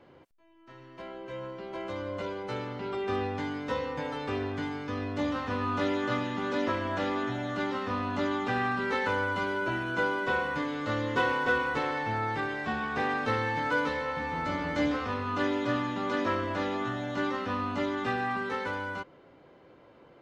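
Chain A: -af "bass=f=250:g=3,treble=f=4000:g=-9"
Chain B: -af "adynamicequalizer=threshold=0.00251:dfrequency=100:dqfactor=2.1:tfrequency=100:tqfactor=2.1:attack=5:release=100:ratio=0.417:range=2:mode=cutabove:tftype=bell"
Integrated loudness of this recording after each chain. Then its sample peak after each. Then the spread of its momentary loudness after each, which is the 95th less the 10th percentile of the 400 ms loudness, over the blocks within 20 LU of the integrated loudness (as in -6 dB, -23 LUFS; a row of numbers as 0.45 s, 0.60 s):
-30.5 LUFS, -31.0 LUFS; -14.5 dBFS, -14.5 dBFS; 7 LU, 8 LU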